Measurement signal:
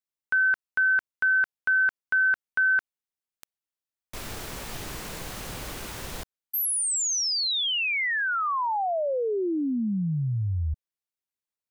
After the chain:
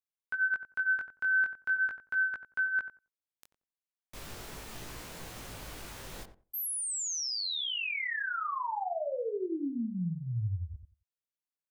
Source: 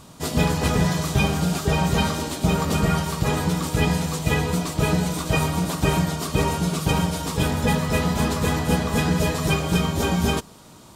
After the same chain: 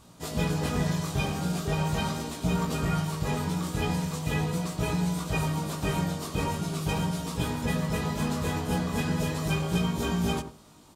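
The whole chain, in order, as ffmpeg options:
ffmpeg -i in.wav -filter_complex "[0:a]flanger=delay=17:depth=4.7:speed=0.4,asplit=2[link_01][link_02];[link_02]adelay=90,lowpass=frequency=1000:poles=1,volume=-8dB,asplit=2[link_03][link_04];[link_04]adelay=90,lowpass=frequency=1000:poles=1,volume=0.2,asplit=2[link_05][link_06];[link_06]adelay=90,lowpass=frequency=1000:poles=1,volume=0.2[link_07];[link_01][link_03][link_05][link_07]amix=inputs=4:normalize=0,volume=-5dB" out.wav

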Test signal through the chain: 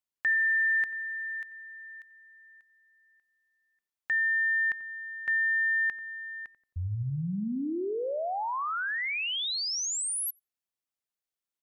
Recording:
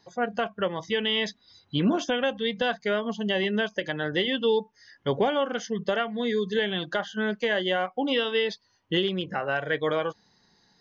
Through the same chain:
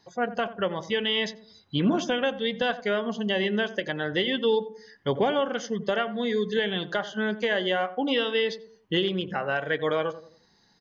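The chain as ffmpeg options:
ffmpeg -i in.wav -filter_complex "[0:a]asplit=2[link_01][link_02];[link_02]adelay=89,lowpass=frequency=930:poles=1,volume=-12.5dB,asplit=2[link_03][link_04];[link_04]adelay=89,lowpass=frequency=930:poles=1,volume=0.45,asplit=2[link_05][link_06];[link_06]adelay=89,lowpass=frequency=930:poles=1,volume=0.45,asplit=2[link_07][link_08];[link_08]adelay=89,lowpass=frequency=930:poles=1,volume=0.45[link_09];[link_01][link_03][link_05][link_07][link_09]amix=inputs=5:normalize=0" out.wav

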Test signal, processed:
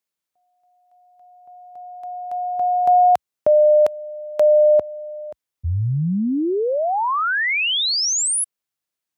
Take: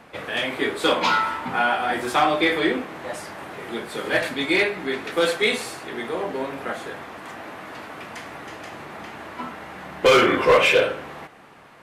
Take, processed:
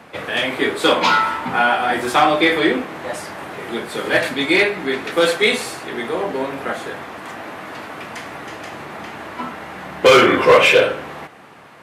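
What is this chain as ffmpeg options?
ffmpeg -i in.wav -af "highpass=frequency=66:width=0.5412,highpass=frequency=66:width=1.3066,volume=5dB" out.wav

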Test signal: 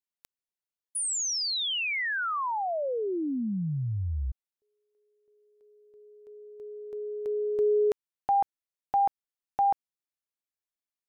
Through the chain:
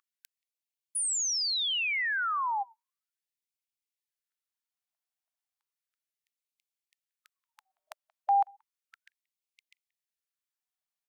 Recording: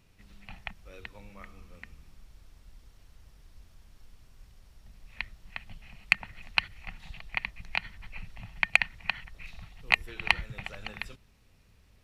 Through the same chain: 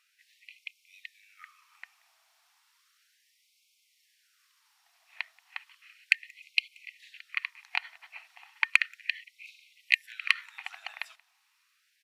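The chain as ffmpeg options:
ffmpeg -i in.wav -filter_complex "[0:a]aeval=exprs='val(0)+0.00501*sin(2*PI*580*n/s)':channel_layout=same,asplit=2[link_01][link_02];[link_02]adelay=180,highpass=300,lowpass=3400,asoftclip=type=hard:threshold=-12dB,volume=-27dB[link_03];[link_01][link_03]amix=inputs=2:normalize=0,afftfilt=real='re*gte(b*sr/1024,610*pow(2100/610,0.5+0.5*sin(2*PI*0.34*pts/sr)))':imag='im*gte(b*sr/1024,610*pow(2100/610,0.5+0.5*sin(2*PI*0.34*pts/sr)))':win_size=1024:overlap=0.75" out.wav

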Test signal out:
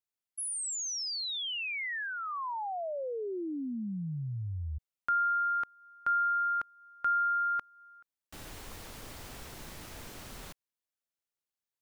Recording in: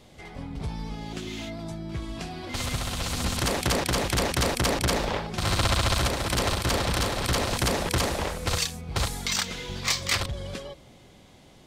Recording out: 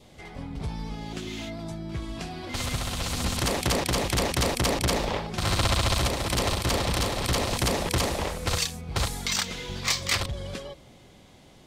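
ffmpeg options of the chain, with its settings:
ffmpeg -i in.wav -af "adynamicequalizer=threshold=0.00794:dfrequency=1500:dqfactor=3.6:tfrequency=1500:tqfactor=3.6:attack=5:release=100:ratio=0.375:range=3.5:mode=cutabove:tftype=bell" out.wav

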